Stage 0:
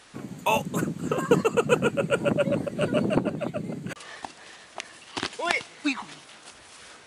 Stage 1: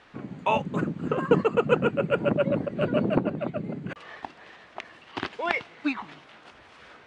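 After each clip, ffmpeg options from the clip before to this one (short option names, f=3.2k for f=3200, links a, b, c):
-af "lowpass=2.6k"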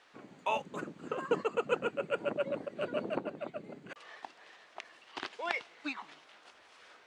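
-af "bass=f=250:g=-15,treble=f=4k:g=8,volume=-8dB"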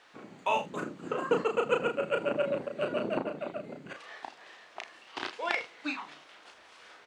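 -af "aecho=1:1:34|79:0.562|0.133,volume=3dB"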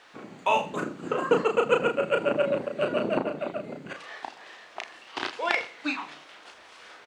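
-filter_complex "[0:a]asplit=2[a][b];[b]adelay=122.4,volume=-20dB,highshelf=f=4k:g=-2.76[c];[a][c]amix=inputs=2:normalize=0,volume=5dB"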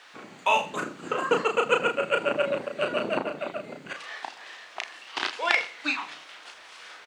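-af "tiltshelf=f=780:g=-5"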